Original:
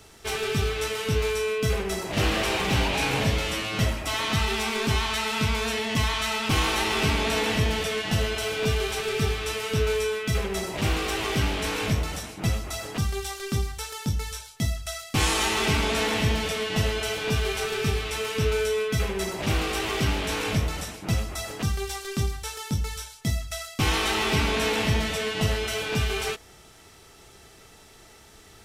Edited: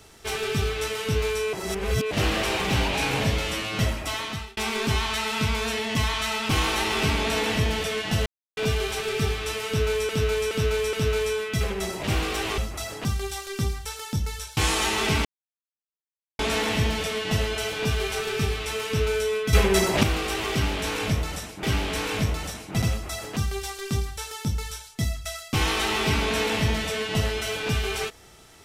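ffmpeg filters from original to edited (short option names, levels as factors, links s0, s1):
-filter_complex "[0:a]asplit=16[s0][s1][s2][s3][s4][s5][s6][s7][s8][s9][s10][s11][s12][s13][s14][s15];[s0]atrim=end=1.532[s16];[s1]atrim=start=1.528:end=2.112,asetpts=PTS-STARTPTS,areverse[s17];[s2]atrim=start=2.108:end=4.57,asetpts=PTS-STARTPTS,afade=t=out:st=1.932:d=0.53[s18];[s3]atrim=start=4.57:end=8.26,asetpts=PTS-STARTPTS,afade=t=in:d=0.004:c=hsin,afade=t=out:st=3.686:d=0.004:c=hsin[s19];[s4]atrim=start=8.26:end=8.57,asetpts=PTS-STARTPTS,volume=0[s20];[s5]atrim=start=8.57:end=10.092,asetpts=PTS-STARTPTS,afade=t=in:d=0.004:c=hsin[s21];[s6]atrim=start=9.668:end=10.092[s22];[s7]atrim=start=9.668:end=10.092[s23];[s8]atrim=start=9.668:end=11.322[s24];[s9]atrim=start=12.508:end=14.502[s25];[s10]atrim=start=15.158:end=15.84,asetpts=PTS-STARTPTS,afade=t=out:st=0.678:d=0.004:c=hsin,apad=pad_dur=1.14[s26];[s11]atrim=start=15.84:end=18.982,asetpts=PTS-STARTPTS,afade=t=in:d=0.004:c=hsin[s27];[s12]atrim=start=18.978:end=19.482,asetpts=PTS-STARTPTS,volume=2.66[s28];[s13]atrim=start=19.478:end=21.082[s29];[s14]atrim=start=11.318:end=12.512[s30];[s15]atrim=start=21.078[s31];[s16][s17]acrossfade=d=0.004:c1=hsin:c2=hsin[s32];[s18][s19][s20][s21]concat=n=4:v=0:a=1[s33];[s32][s33]acrossfade=d=0.004:c1=hsin:c2=hsin[s34];[s34][s22]acrossfade=d=0.004:c1=hsin:c2=hsin[s35];[s35][s23]acrossfade=d=0.004:c1=hsin:c2=hsin[s36];[s36][s24]acrossfade=d=0.004:c1=hsin:c2=hsin[s37];[s37][s25]acrossfade=d=0.004:c1=hsin:c2=hsin[s38];[s26][s27]concat=n=2:v=0:a=1[s39];[s38][s39]acrossfade=d=0.004:c1=hsin:c2=hsin[s40];[s40][s28]acrossfade=d=0.004:c1=hsin:c2=hsin[s41];[s41][s29]acrossfade=d=0.004:c1=hsin:c2=hsin[s42];[s42][s30]acrossfade=d=0.004:c1=hsin:c2=hsin[s43];[s43][s31]acrossfade=d=0.004:c1=hsin:c2=hsin"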